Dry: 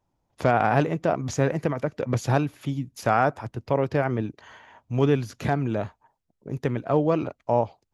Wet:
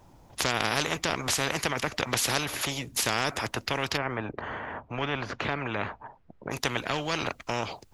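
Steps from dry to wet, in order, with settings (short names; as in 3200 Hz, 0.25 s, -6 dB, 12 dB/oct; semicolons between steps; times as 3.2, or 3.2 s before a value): 3.96–6.5 LPF 1100 Hz -> 2100 Hz 12 dB/oct; spectral compressor 4:1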